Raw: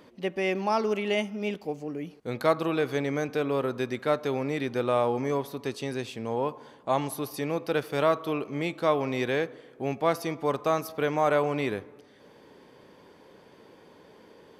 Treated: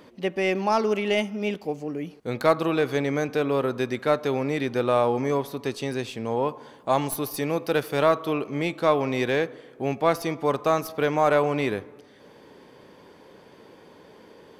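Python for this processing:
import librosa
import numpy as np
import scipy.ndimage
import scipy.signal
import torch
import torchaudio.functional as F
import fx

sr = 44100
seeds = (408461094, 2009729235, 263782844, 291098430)

y = fx.tracing_dist(x, sr, depth_ms=0.02)
y = fx.high_shelf(y, sr, hz=9400.0, db=8.0, at=(6.74, 7.93))
y = F.gain(torch.from_numpy(y), 3.5).numpy()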